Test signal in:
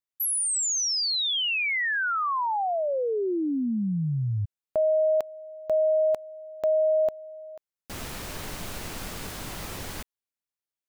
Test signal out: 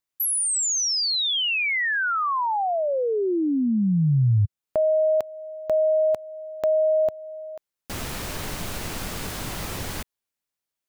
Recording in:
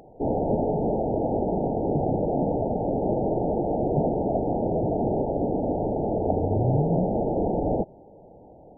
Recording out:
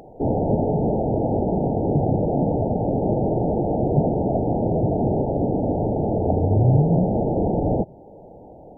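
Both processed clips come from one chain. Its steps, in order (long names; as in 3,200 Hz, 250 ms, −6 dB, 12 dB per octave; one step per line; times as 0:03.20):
dynamic equaliser 110 Hz, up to +7 dB, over −41 dBFS, Q 0.75
in parallel at −1 dB: downward compressor, threshold −34 dBFS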